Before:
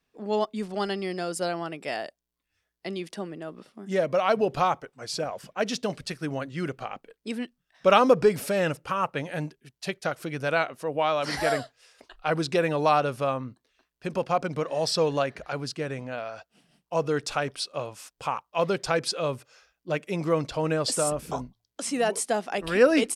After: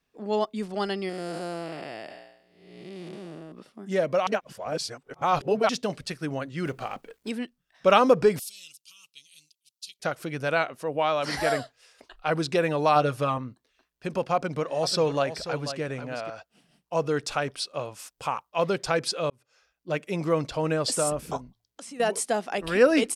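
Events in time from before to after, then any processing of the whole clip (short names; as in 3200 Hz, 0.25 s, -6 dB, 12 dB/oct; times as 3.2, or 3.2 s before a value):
1.09–3.52 time blur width 0.431 s
4.27–5.69 reverse
6.65–7.3 G.711 law mismatch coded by mu
8.39–10 inverse Chebyshev high-pass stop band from 1800 Hz
12.95–13.38 comb 6.5 ms, depth 72%
14.34–16.3 echo 0.489 s -10.5 dB
17.99–18.49 high shelf 7600 Hz +5 dB
19.3–19.97 fade in
21.37–22 compressor 5:1, threshold -40 dBFS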